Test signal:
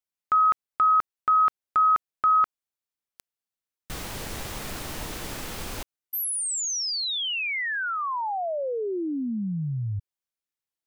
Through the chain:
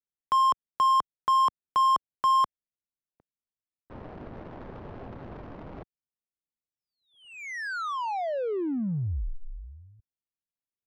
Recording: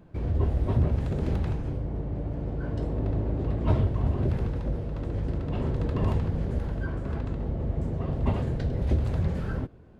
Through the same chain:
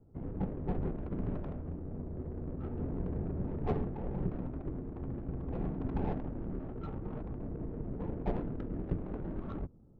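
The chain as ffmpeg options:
-af "highpass=f=220:t=q:w=0.5412,highpass=f=220:t=q:w=1.307,lowpass=f=3.5k:t=q:w=0.5176,lowpass=f=3.5k:t=q:w=0.7071,lowpass=f=3.5k:t=q:w=1.932,afreqshift=-210,highshelf=f=2.1k:g=-9.5,adynamicsmooth=sensitivity=4:basefreq=500"

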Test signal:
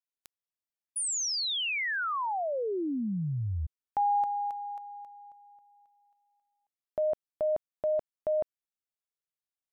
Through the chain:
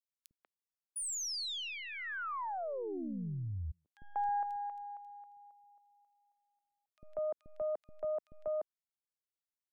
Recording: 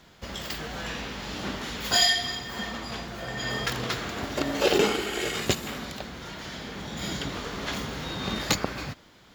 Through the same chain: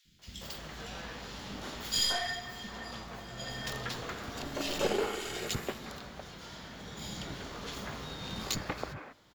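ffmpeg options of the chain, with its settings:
-filter_complex "[0:a]aeval=exprs='0.355*(cos(1*acos(clip(val(0)/0.355,-1,1)))-cos(1*PI/2))+0.0224*(cos(6*acos(clip(val(0)/0.355,-1,1)))-cos(6*PI/2))':c=same,acrossover=split=280|2300[a][b][c];[a]adelay=50[d];[b]adelay=190[e];[d][e][c]amix=inputs=3:normalize=0,volume=-7dB"

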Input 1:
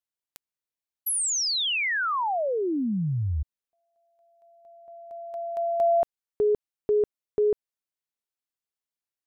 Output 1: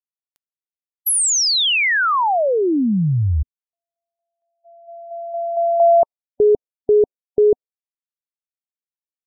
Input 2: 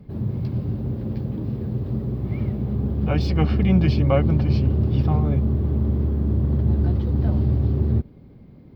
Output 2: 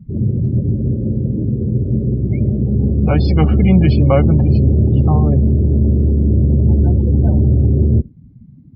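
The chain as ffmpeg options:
-filter_complex "[0:a]afftdn=nr=28:nf=-33,asplit=2[a][b];[b]alimiter=limit=-17dB:level=0:latency=1:release=14,volume=0.5dB[c];[a][c]amix=inputs=2:normalize=0,volume=3dB"

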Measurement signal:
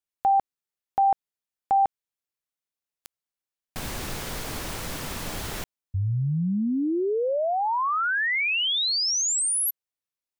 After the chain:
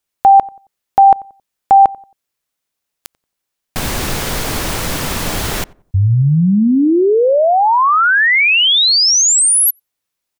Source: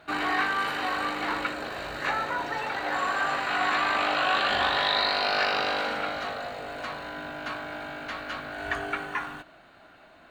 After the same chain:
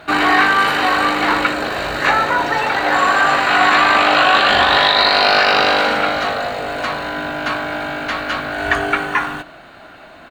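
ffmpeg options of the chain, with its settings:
-filter_complex "[0:a]asplit=2[a][b];[b]adelay=90,lowpass=f=1.1k:p=1,volume=-21dB,asplit=2[c][d];[d]adelay=90,lowpass=f=1.1k:p=1,volume=0.34,asplit=2[e][f];[f]adelay=90,lowpass=f=1.1k:p=1,volume=0.34[g];[c][e][g]amix=inputs=3:normalize=0[h];[a][h]amix=inputs=2:normalize=0,alimiter=level_in=14.5dB:limit=-1dB:release=50:level=0:latency=1,volume=-1dB"

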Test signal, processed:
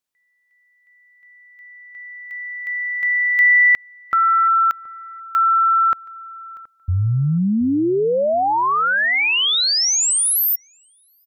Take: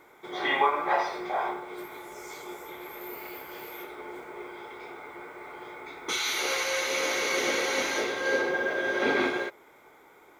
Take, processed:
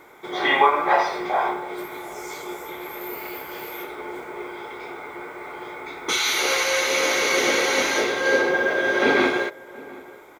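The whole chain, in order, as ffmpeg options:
-filter_complex "[0:a]asplit=2[a][b];[b]adelay=724,lowpass=f=1.1k:p=1,volume=-19.5dB,asplit=2[c][d];[d]adelay=724,lowpass=f=1.1k:p=1,volume=0.23[e];[a][c][e]amix=inputs=3:normalize=0,volume=7dB"

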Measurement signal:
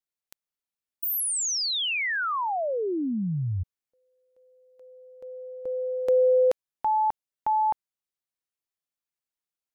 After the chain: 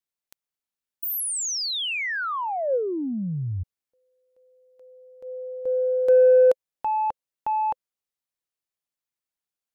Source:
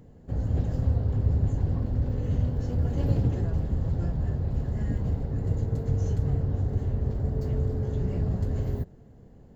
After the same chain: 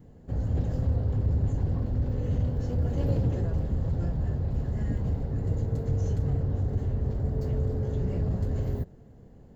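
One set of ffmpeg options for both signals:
-af "asoftclip=type=tanh:threshold=-16.5dB,adynamicequalizer=threshold=0.00631:dfrequency=520:dqfactor=4.8:tfrequency=520:tqfactor=4.8:attack=5:release=100:ratio=0.4:range=3.5:mode=boostabove:tftype=bell"

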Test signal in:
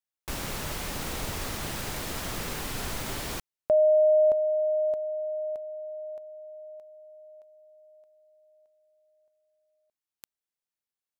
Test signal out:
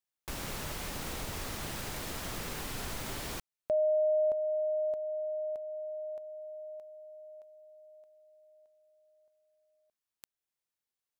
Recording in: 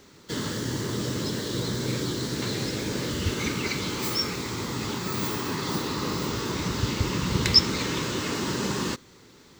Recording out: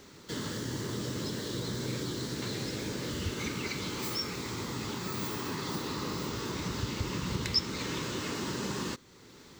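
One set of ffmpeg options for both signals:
-af "acompressor=threshold=-39dB:ratio=1.5:attack=0.28:release=662:detection=peak"

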